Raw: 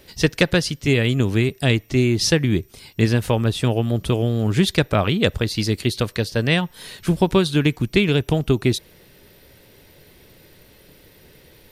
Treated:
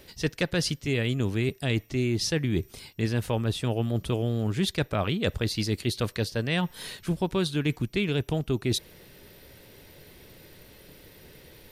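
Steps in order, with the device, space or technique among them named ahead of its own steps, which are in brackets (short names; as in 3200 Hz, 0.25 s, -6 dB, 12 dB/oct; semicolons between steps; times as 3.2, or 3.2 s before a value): compression on the reversed sound (reverse; compressor 4:1, threshold -23 dBFS, peak gain reduction 11 dB; reverse); gain -1 dB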